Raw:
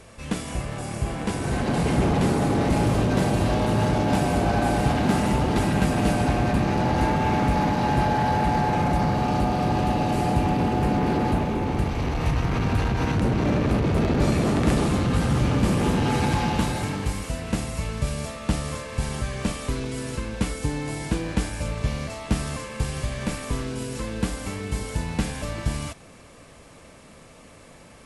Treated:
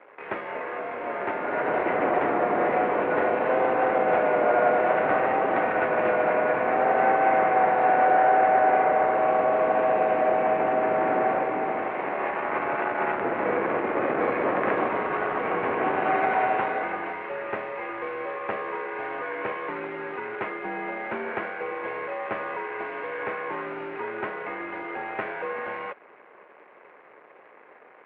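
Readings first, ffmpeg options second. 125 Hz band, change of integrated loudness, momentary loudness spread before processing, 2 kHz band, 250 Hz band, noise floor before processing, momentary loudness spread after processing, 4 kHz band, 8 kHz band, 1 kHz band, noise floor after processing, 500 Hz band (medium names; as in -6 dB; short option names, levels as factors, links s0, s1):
-22.5 dB, -1.0 dB, 8 LU, +4.0 dB, -10.0 dB, -48 dBFS, 12 LU, under -10 dB, under -40 dB, +4.0 dB, -52 dBFS, +4.5 dB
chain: -af "acrusher=bits=7:dc=4:mix=0:aa=0.000001,highpass=f=500:t=q:w=0.5412,highpass=f=500:t=q:w=1.307,lowpass=f=2300:t=q:w=0.5176,lowpass=f=2300:t=q:w=0.7071,lowpass=f=2300:t=q:w=1.932,afreqshift=-100,volume=1.88"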